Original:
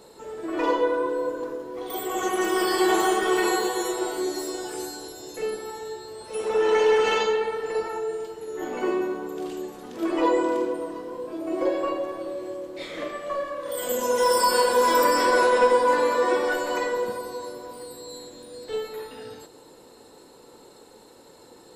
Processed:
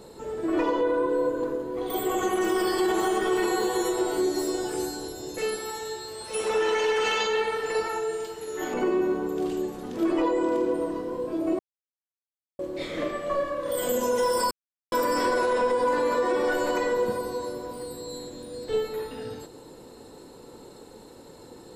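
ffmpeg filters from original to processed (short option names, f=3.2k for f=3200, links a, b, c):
-filter_complex "[0:a]asettb=1/sr,asplit=3[a][b][c];[a]atrim=end=0.794[d];[b]atrim=start=0.79:end=2.42,asetpts=PTS-STARTPTS,afade=t=in:d=0.004:c=qsin,afade=t=out:st=1.626:d=0.004:c=qsin,bandreject=f=5.5k:w=7[e];[c]atrim=start=2.416[f];[d][e]acrossfade=d=0.004:c1=hsin:c2=qsin[g];[g][f]acrossfade=d=0.004:c1=qsin:c2=hsin,asettb=1/sr,asplit=3[h][i][j];[h]atrim=end=5.384[k];[i]atrim=start=5.38:end=8.74,asetpts=PTS-STARTPTS,afade=t=in:d=0.004:c=qsin,afade=t=out:st=3.356:d=0.004:c=qsin,tiltshelf=f=830:g=-7[l];[j]atrim=start=8.736[m];[k][l]acrossfade=d=0.004:c1=hsin:c2=qsin[n];[n][m]acrossfade=d=0.004:c1=qsin:c2=hsin,asplit=5[o][p][q][r][s];[o]atrim=end=11.59,asetpts=PTS-STARTPTS,afade=t=out:st=11.586:d=0.004:c=hsin[t];[p]atrim=start=11.59:end=12.59,asetpts=PTS-STARTPTS,volume=0[u];[q]atrim=start=12.59:end=14.51,asetpts=PTS-STARTPTS,afade=t=in:d=0.004:c=hsin,afade=t=out:st=1.916:d=0.004:c=hsin[v];[r]atrim=start=14.51:end=14.92,asetpts=PTS-STARTPTS,volume=0[w];[s]atrim=start=14.92,asetpts=PTS-STARTPTS,afade=t=in:d=0.004:c=hsin[x];[t][u][v][w][x]concat=n=5:v=0:a=1,lowshelf=f=310:g=10,alimiter=limit=-16.5dB:level=0:latency=1:release=106"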